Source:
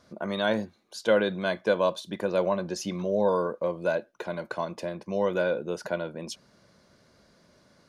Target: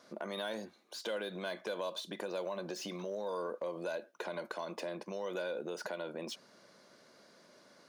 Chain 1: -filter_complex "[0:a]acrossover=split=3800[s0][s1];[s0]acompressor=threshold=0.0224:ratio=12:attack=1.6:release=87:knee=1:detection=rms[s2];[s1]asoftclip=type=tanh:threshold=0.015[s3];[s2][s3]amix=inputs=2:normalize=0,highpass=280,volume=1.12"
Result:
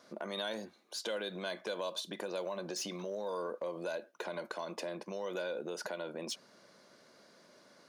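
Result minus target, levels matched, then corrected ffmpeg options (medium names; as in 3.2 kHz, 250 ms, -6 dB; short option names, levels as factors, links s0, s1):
saturation: distortion -9 dB
-filter_complex "[0:a]acrossover=split=3800[s0][s1];[s0]acompressor=threshold=0.0224:ratio=12:attack=1.6:release=87:knee=1:detection=rms[s2];[s1]asoftclip=type=tanh:threshold=0.00376[s3];[s2][s3]amix=inputs=2:normalize=0,highpass=280,volume=1.12"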